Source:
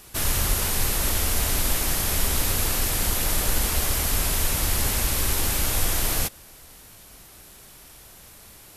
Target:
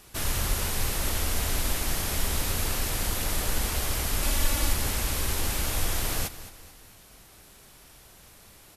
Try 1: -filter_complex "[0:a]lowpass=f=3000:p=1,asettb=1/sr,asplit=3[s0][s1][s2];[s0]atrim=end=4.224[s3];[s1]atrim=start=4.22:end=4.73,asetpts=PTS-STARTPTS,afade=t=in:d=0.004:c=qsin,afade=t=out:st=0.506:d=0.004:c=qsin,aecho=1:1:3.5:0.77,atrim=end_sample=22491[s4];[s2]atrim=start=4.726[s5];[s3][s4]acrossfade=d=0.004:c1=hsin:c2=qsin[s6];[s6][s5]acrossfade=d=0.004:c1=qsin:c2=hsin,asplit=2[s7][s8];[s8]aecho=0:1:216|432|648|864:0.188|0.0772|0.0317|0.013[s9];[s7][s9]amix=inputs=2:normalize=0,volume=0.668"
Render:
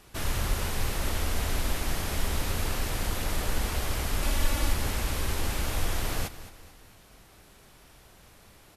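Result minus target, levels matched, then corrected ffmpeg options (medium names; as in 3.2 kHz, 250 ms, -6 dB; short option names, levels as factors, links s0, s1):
8 kHz band -3.5 dB
-filter_complex "[0:a]lowpass=f=8500:p=1,asettb=1/sr,asplit=3[s0][s1][s2];[s0]atrim=end=4.224[s3];[s1]atrim=start=4.22:end=4.73,asetpts=PTS-STARTPTS,afade=t=in:d=0.004:c=qsin,afade=t=out:st=0.506:d=0.004:c=qsin,aecho=1:1:3.5:0.77,atrim=end_sample=22491[s4];[s2]atrim=start=4.726[s5];[s3][s4]acrossfade=d=0.004:c1=hsin:c2=qsin[s6];[s6][s5]acrossfade=d=0.004:c1=qsin:c2=hsin,asplit=2[s7][s8];[s8]aecho=0:1:216|432|648|864:0.188|0.0772|0.0317|0.013[s9];[s7][s9]amix=inputs=2:normalize=0,volume=0.668"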